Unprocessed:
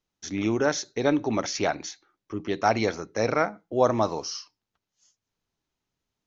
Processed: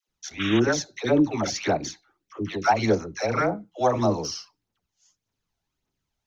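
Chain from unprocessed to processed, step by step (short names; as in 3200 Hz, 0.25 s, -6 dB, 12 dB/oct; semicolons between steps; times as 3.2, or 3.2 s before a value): dispersion lows, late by 85 ms, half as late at 640 Hz; phaser 1.7 Hz, delay 1.5 ms, feedback 48%; painted sound noise, 0.39–0.6, 1100–3800 Hz -31 dBFS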